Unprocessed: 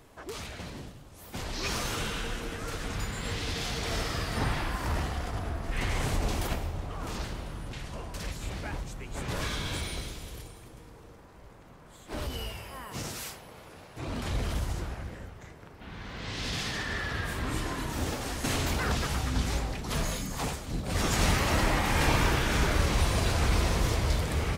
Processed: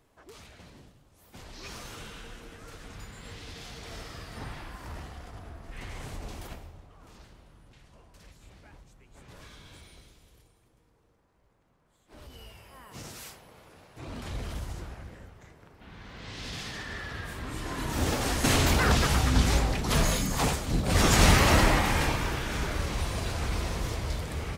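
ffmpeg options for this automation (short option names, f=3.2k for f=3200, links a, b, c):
-af "volume=12.5dB,afade=t=out:st=6.49:d=0.41:silence=0.473151,afade=t=in:st=12.07:d=1.19:silence=0.251189,afade=t=in:st=17.57:d=0.67:silence=0.281838,afade=t=out:st=21.49:d=0.68:silence=0.281838"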